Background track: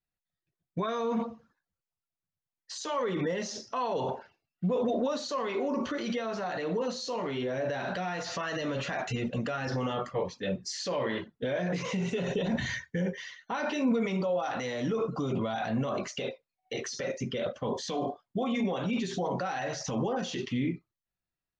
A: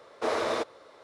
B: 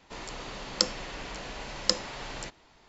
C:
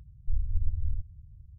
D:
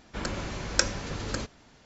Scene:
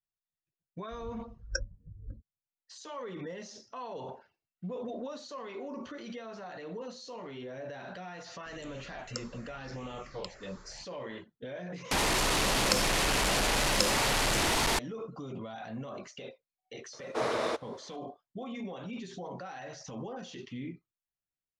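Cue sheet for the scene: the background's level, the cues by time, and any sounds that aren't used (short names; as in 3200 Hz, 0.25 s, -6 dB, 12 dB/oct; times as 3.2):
background track -10 dB
0.76 add D -13.5 dB + spectral expander 4:1
8.35 add B -11 dB + phaser stages 6, 0.8 Hz, lowest notch 180–1400 Hz
11.91 replace with B -0.5 dB + delta modulation 64 kbps, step -21 dBFS
16.93 add A -2.5 dB
not used: C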